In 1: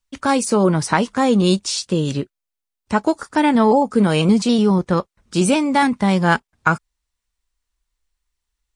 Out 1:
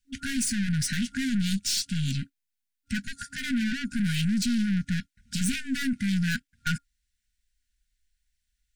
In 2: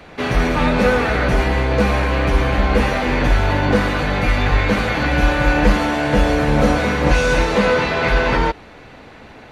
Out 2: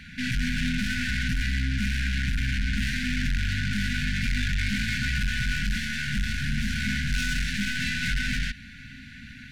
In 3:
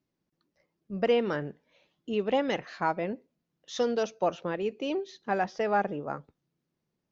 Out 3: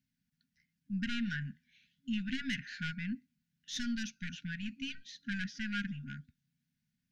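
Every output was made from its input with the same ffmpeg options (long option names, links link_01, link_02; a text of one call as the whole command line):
ffmpeg -i in.wav -af "aeval=exprs='(tanh(15.8*val(0)+0.35)-tanh(0.35))/15.8':channel_layout=same,afftfilt=real='re*(1-between(b*sr/4096,270,1400))':imag='im*(1-between(b*sr/4096,270,1400))':win_size=4096:overlap=0.75,volume=1dB" out.wav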